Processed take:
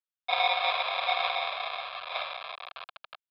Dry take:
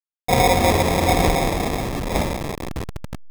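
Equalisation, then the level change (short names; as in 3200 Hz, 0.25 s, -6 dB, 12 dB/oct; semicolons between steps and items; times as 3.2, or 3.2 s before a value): elliptic band-pass 790–4300 Hz, stop band 40 dB; bell 2200 Hz +3 dB 0.29 oct; fixed phaser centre 1300 Hz, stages 8; 0.0 dB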